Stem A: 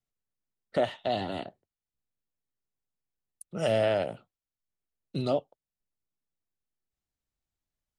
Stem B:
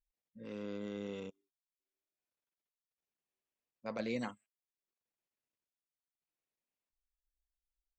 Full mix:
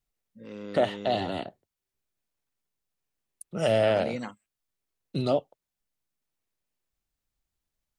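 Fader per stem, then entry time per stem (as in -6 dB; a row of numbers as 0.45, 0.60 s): +2.5, +3.0 dB; 0.00, 0.00 s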